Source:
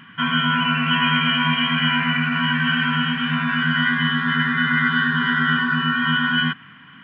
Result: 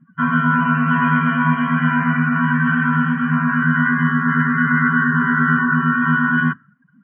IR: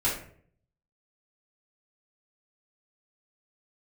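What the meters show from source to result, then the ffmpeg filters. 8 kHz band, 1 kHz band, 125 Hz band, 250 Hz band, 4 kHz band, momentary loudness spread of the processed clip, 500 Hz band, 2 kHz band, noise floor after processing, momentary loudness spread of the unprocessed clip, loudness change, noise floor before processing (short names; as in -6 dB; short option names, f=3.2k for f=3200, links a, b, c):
n/a, +4.0 dB, +5.5 dB, +5.5 dB, -19.5 dB, 2 LU, +3.5 dB, +1.5 dB, -54 dBFS, 3 LU, +2.0 dB, -45 dBFS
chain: -af "asuperstop=centerf=900:order=4:qfactor=6.3,afftdn=nr=29:nf=-32,lowpass=f=1.5k:w=0.5412,lowpass=f=1.5k:w=1.3066,volume=5.5dB"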